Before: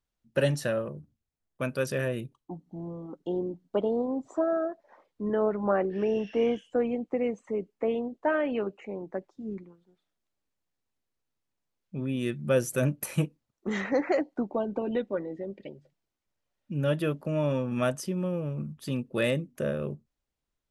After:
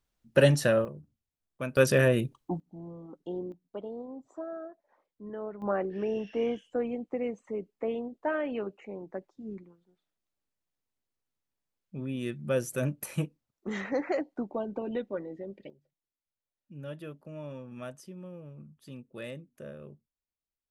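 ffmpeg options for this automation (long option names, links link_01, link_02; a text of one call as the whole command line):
ffmpeg -i in.wav -af "asetnsamples=nb_out_samples=441:pad=0,asendcmd='0.85 volume volume -3.5dB;1.77 volume volume 7dB;2.6 volume volume -5.5dB;3.52 volume volume -12dB;5.62 volume volume -4dB;15.7 volume volume -14dB',volume=4.5dB" out.wav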